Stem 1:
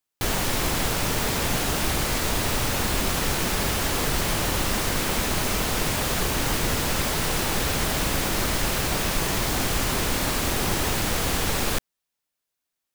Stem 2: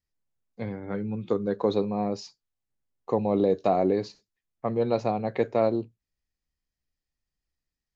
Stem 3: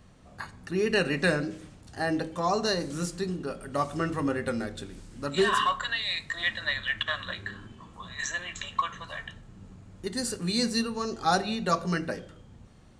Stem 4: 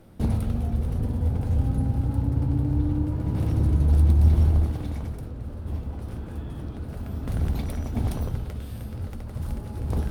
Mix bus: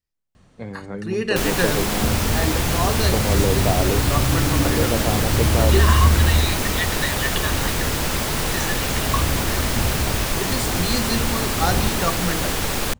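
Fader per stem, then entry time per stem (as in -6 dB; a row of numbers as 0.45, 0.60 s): +1.5, 0.0, +2.0, +2.0 dB; 1.15, 0.00, 0.35, 1.80 s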